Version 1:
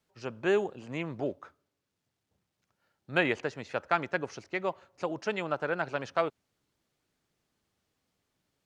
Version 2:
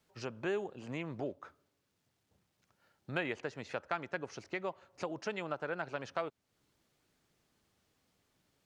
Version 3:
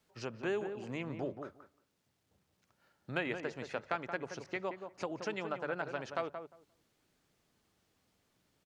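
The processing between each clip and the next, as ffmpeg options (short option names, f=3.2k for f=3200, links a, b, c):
-af "acompressor=threshold=-46dB:ratio=2,volume=3.5dB"
-filter_complex "[0:a]bandreject=f=50:t=h:w=6,bandreject=f=100:t=h:w=6,bandreject=f=150:t=h:w=6,asplit=2[a][b];[b]adelay=176,lowpass=f=1.3k:p=1,volume=-7dB,asplit=2[c][d];[d]adelay=176,lowpass=f=1.3k:p=1,volume=0.16,asplit=2[e][f];[f]adelay=176,lowpass=f=1.3k:p=1,volume=0.16[g];[a][c][e][g]amix=inputs=4:normalize=0"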